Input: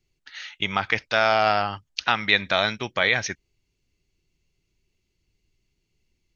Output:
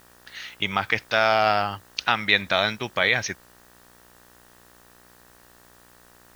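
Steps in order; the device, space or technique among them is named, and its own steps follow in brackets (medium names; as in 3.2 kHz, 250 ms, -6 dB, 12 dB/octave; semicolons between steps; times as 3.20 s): video cassette with head-switching buzz (mains buzz 60 Hz, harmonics 32, -56 dBFS -1 dB/octave; white noise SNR 30 dB)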